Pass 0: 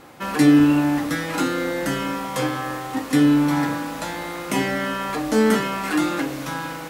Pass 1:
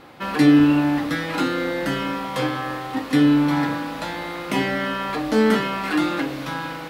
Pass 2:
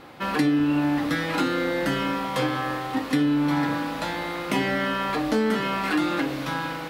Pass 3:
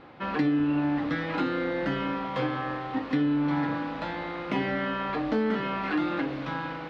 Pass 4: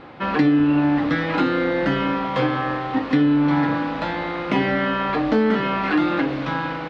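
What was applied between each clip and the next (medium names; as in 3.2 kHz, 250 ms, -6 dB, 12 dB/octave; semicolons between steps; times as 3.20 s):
resonant high shelf 5.3 kHz -6.5 dB, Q 1.5
compression 6:1, threshold -19 dBFS, peak gain reduction 9 dB
distance through air 240 m; trim -3 dB
resampled via 22.05 kHz; trim +8 dB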